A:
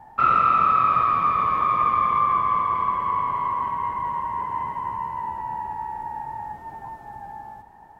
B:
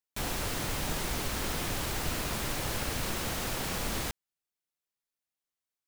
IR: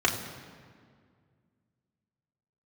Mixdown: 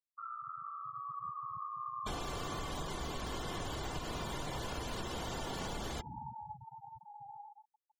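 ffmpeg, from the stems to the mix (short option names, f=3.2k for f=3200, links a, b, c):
-filter_complex "[0:a]equalizer=f=130:t=o:w=1.2:g=6,acompressor=threshold=-29dB:ratio=4,volume=-19.5dB,asplit=2[a][b];[b]volume=-8dB[c];[1:a]adelay=1900,volume=0.5dB,asplit=2[d][e];[e]volume=-18dB[f];[2:a]atrim=start_sample=2205[g];[c][f]amix=inputs=2:normalize=0[h];[h][g]afir=irnorm=-1:irlink=0[i];[a][d][i]amix=inputs=3:normalize=0,afftfilt=real='re*gte(hypot(re,im),0.0178)':imag='im*gte(hypot(re,im),0.0178)':win_size=1024:overlap=0.75,acompressor=threshold=-36dB:ratio=10"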